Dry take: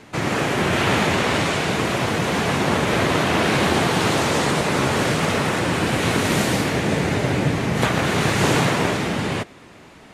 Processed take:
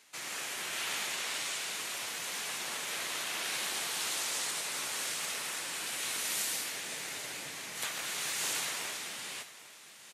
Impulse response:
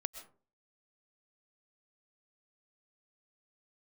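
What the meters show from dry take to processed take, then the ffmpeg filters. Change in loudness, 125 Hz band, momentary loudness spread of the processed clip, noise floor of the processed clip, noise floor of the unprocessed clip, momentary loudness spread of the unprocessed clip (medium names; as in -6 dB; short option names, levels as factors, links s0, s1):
-14.5 dB, -38.0 dB, 7 LU, -53 dBFS, -45 dBFS, 3 LU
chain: -af "aderivative,aecho=1:1:803|1606|2409|3212|4015:0.15|0.0823|0.0453|0.0249|0.0137,volume=0.631"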